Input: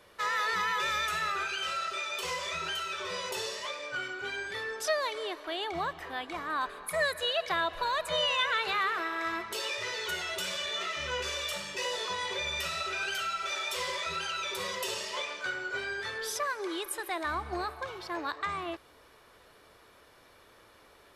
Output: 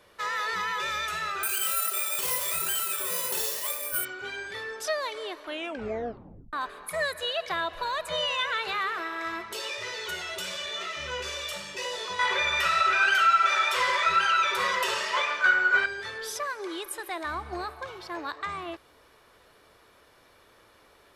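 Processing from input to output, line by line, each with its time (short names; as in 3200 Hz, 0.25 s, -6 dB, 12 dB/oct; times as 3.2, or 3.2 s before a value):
1.43–4.05 careless resampling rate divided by 4×, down none, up zero stuff
5.44 tape stop 1.09 s
12.19–15.86 bell 1400 Hz +14.5 dB 1.9 oct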